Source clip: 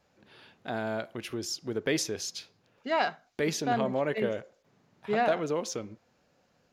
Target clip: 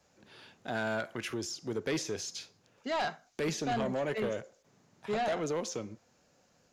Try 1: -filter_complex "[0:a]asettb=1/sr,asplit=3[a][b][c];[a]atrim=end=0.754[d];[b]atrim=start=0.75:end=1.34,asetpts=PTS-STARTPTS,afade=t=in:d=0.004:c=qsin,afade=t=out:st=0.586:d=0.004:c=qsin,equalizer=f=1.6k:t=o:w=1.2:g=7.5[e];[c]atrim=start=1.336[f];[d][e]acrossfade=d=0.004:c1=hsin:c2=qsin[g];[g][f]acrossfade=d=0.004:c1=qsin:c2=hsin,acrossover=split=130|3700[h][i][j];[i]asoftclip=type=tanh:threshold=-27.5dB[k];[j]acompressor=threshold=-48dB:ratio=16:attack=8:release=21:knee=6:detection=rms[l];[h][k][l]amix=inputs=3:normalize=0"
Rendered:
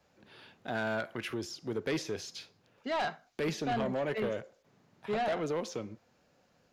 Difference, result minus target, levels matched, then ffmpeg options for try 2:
8000 Hz band -6.5 dB
-filter_complex "[0:a]asettb=1/sr,asplit=3[a][b][c];[a]atrim=end=0.754[d];[b]atrim=start=0.75:end=1.34,asetpts=PTS-STARTPTS,afade=t=in:d=0.004:c=qsin,afade=t=out:st=0.586:d=0.004:c=qsin,equalizer=f=1.6k:t=o:w=1.2:g=7.5[e];[c]atrim=start=1.336[f];[d][e]acrossfade=d=0.004:c1=hsin:c2=qsin[g];[g][f]acrossfade=d=0.004:c1=qsin:c2=hsin,acrossover=split=130|3700[h][i][j];[i]asoftclip=type=tanh:threshold=-27.5dB[k];[j]acompressor=threshold=-48dB:ratio=16:attack=8:release=21:knee=6:detection=rms,equalizer=f=6.7k:t=o:w=0.96:g=9[l];[h][k][l]amix=inputs=3:normalize=0"

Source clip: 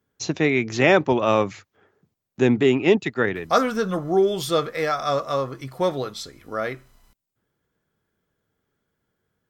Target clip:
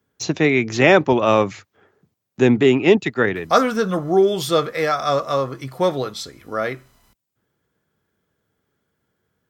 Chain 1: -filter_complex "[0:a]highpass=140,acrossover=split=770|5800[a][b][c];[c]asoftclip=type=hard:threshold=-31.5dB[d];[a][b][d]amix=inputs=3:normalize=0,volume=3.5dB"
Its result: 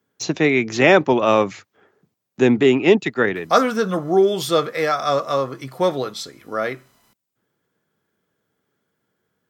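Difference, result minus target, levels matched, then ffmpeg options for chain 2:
125 Hz band -3.0 dB
-filter_complex "[0:a]highpass=51,acrossover=split=770|5800[a][b][c];[c]asoftclip=type=hard:threshold=-31.5dB[d];[a][b][d]amix=inputs=3:normalize=0,volume=3.5dB"

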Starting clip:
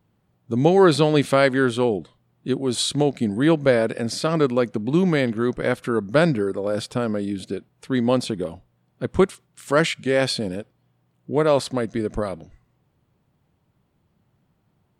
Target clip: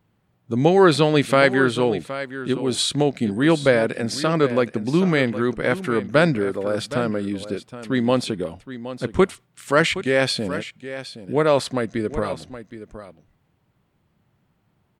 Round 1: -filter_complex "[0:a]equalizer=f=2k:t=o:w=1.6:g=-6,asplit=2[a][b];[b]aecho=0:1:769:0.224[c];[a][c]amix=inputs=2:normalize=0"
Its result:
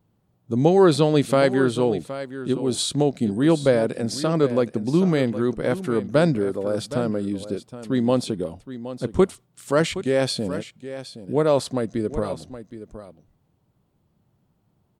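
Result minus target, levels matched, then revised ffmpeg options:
2000 Hz band -7.5 dB
-filter_complex "[0:a]equalizer=f=2k:t=o:w=1.6:g=4,asplit=2[a][b];[b]aecho=0:1:769:0.224[c];[a][c]amix=inputs=2:normalize=0"

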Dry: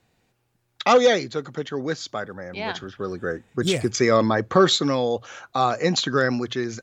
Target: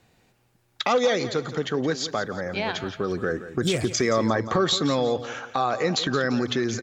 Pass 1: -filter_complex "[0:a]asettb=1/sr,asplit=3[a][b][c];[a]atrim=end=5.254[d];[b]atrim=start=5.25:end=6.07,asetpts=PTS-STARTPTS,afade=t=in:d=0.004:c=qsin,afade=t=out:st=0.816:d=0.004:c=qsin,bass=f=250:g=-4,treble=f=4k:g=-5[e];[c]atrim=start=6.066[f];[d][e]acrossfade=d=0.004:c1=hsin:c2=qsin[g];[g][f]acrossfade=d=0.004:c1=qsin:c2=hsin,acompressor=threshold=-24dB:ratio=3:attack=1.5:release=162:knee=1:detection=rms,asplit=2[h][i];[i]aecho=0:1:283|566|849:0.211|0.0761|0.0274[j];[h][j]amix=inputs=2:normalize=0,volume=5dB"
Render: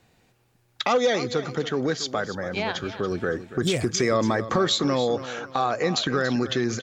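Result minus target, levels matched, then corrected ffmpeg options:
echo 0.111 s late
-filter_complex "[0:a]asettb=1/sr,asplit=3[a][b][c];[a]atrim=end=5.254[d];[b]atrim=start=5.25:end=6.07,asetpts=PTS-STARTPTS,afade=t=in:d=0.004:c=qsin,afade=t=out:st=0.816:d=0.004:c=qsin,bass=f=250:g=-4,treble=f=4k:g=-5[e];[c]atrim=start=6.066[f];[d][e]acrossfade=d=0.004:c1=hsin:c2=qsin[g];[g][f]acrossfade=d=0.004:c1=qsin:c2=hsin,acompressor=threshold=-24dB:ratio=3:attack=1.5:release=162:knee=1:detection=rms,asplit=2[h][i];[i]aecho=0:1:172|344|516:0.211|0.0761|0.0274[j];[h][j]amix=inputs=2:normalize=0,volume=5dB"

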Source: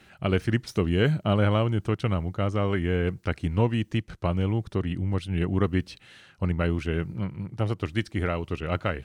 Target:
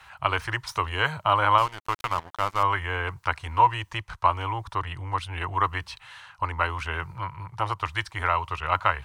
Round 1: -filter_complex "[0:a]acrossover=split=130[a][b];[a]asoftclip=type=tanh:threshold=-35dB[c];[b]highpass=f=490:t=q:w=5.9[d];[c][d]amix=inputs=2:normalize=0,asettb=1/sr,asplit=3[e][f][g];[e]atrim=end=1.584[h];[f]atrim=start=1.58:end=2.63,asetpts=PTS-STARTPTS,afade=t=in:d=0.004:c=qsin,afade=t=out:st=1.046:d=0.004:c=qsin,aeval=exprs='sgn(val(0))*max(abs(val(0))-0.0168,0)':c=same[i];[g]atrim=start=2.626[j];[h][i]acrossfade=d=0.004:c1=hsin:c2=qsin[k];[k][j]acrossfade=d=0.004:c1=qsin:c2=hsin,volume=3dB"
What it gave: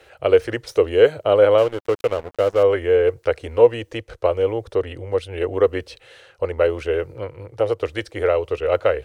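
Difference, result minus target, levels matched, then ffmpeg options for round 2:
1000 Hz band -14.0 dB
-filter_complex "[0:a]acrossover=split=130[a][b];[a]asoftclip=type=tanh:threshold=-35dB[c];[b]highpass=f=980:t=q:w=5.9[d];[c][d]amix=inputs=2:normalize=0,asettb=1/sr,asplit=3[e][f][g];[e]atrim=end=1.584[h];[f]atrim=start=1.58:end=2.63,asetpts=PTS-STARTPTS,afade=t=in:d=0.004:c=qsin,afade=t=out:st=1.046:d=0.004:c=qsin,aeval=exprs='sgn(val(0))*max(abs(val(0))-0.0168,0)':c=same[i];[g]atrim=start=2.626[j];[h][i]acrossfade=d=0.004:c1=hsin:c2=qsin[k];[k][j]acrossfade=d=0.004:c1=qsin:c2=hsin,volume=3dB"

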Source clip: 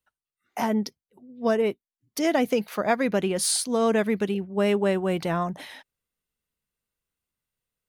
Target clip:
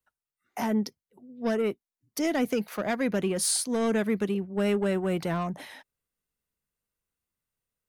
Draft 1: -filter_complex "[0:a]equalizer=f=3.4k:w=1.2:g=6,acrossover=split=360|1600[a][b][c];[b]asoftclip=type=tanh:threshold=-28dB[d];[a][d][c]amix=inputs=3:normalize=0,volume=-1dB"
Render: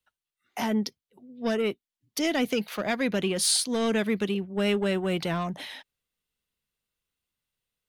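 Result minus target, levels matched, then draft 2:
4000 Hz band +6.0 dB
-filter_complex "[0:a]equalizer=f=3.4k:w=1.2:g=-4,acrossover=split=360|1600[a][b][c];[b]asoftclip=type=tanh:threshold=-28dB[d];[a][d][c]amix=inputs=3:normalize=0,volume=-1dB"

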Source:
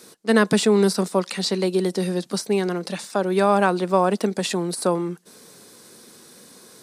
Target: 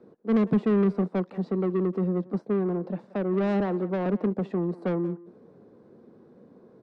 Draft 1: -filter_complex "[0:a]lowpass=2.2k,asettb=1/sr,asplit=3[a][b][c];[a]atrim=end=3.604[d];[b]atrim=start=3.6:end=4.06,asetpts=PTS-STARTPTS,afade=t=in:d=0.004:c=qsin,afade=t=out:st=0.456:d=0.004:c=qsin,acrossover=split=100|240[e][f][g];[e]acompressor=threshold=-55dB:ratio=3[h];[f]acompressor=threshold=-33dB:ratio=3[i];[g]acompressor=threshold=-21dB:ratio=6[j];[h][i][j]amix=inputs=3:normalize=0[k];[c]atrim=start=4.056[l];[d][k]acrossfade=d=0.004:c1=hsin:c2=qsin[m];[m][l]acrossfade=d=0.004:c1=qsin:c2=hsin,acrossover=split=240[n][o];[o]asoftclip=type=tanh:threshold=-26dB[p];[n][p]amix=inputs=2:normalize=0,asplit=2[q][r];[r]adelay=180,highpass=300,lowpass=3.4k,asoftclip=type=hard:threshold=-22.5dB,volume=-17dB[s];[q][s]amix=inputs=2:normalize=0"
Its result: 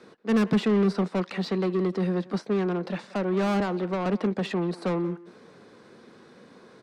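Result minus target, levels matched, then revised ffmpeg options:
2000 Hz band +6.0 dB
-filter_complex "[0:a]lowpass=590,asettb=1/sr,asplit=3[a][b][c];[a]atrim=end=3.604[d];[b]atrim=start=3.6:end=4.06,asetpts=PTS-STARTPTS,afade=t=in:d=0.004:c=qsin,afade=t=out:st=0.456:d=0.004:c=qsin,acrossover=split=100|240[e][f][g];[e]acompressor=threshold=-55dB:ratio=3[h];[f]acompressor=threshold=-33dB:ratio=3[i];[g]acompressor=threshold=-21dB:ratio=6[j];[h][i][j]amix=inputs=3:normalize=0[k];[c]atrim=start=4.056[l];[d][k]acrossfade=d=0.004:c1=hsin:c2=qsin[m];[m][l]acrossfade=d=0.004:c1=qsin:c2=hsin,acrossover=split=240[n][o];[o]asoftclip=type=tanh:threshold=-26dB[p];[n][p]amix=inputs=2:normalize=0,asplit=2[q][r];[r]adelay=180,highpass=300,lowpass=3.4k,asoftclip=type=hard:threshold=-22.5dB,volume=-17dB[s];[q][s]amix=inputs=2:normalize=0"

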